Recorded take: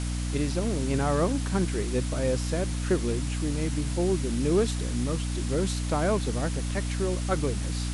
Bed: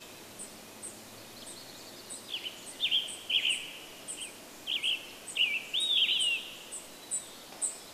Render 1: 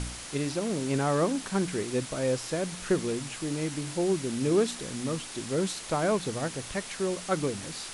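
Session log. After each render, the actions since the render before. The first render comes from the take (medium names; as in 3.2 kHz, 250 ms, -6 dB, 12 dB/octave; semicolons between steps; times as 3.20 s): de-hum 60 Hz, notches 5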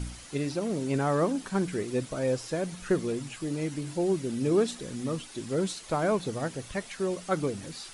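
noise reduction 9 dB, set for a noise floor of -41 dBFS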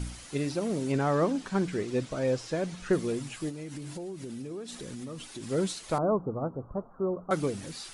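0.92–2.93 s: low-pass 6.9 kHz; 3.49–5.43 s: compression 12:1, threshold -35 dBFS; 5.98–7.31 s: steep low-pass 1.3 kHz 72 dB/octave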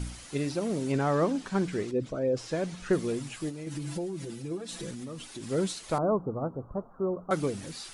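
1.91–2.37 s: resonances exaggerated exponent 1.5; 3.66–4.91 s: comb 6 ms, depth 100%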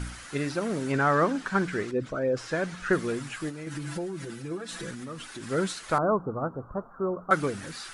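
peaking EQ 1.5 kHz +12 dB 1 oct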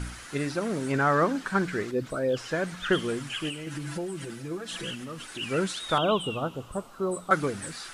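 add bed -8.5 dB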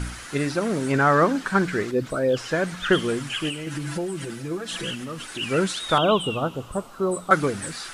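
trim +5 dB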